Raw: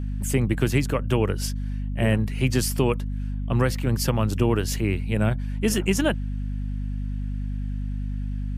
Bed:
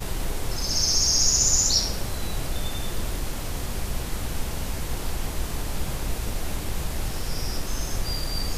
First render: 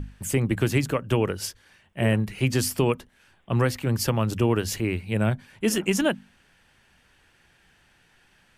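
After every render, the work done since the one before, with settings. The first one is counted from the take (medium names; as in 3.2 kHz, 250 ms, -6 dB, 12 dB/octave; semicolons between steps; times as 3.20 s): hum notches 50/100/150/200/250 Hz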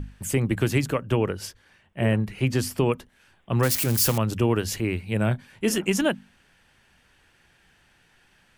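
1.04–2.92 s: treble shelf 3.4 kHz -6 dB; 3.63–4.18 s: zero-crossing glitches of -17.5 dBFS; 5.17–5.71 s: doubling 25 ms -13.5 dB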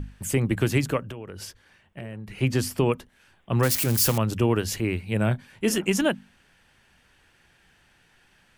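1.02–2.31 s: compression 12:1, threshold -33 dBFS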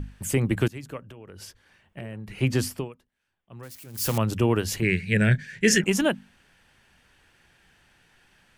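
0.68–2.00 s: fade in, from -20.5 dB; 2.64–4.18 s: dip -20.5 dB, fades 0.25 s; 4.82–5.84 s: FFT filter 100 Hz 0 dB, 160 Hz +12 dB, 280 Hz -5 dB, 420 Hz +4 dB, 790 Hz -10 dB, 1.2 kHz -11 dB, 1.7 kHz +15 dB, 3 kHz +3 dB, 6.7 kHz +10 dB, 11 kHz -4 dB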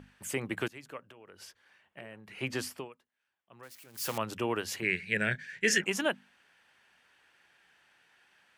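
high-pass 1 kHz 6 dB/octave; treble shelf 3.5 kHz -9 dB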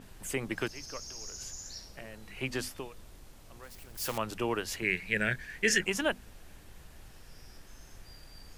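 add bed -23.5 dB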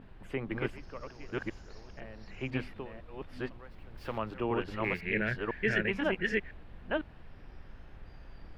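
chunks repeated in reverse 501 ms, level -0.5 dB; distance through air 420 m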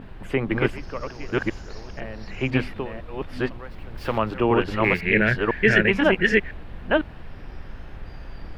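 trim +12 dB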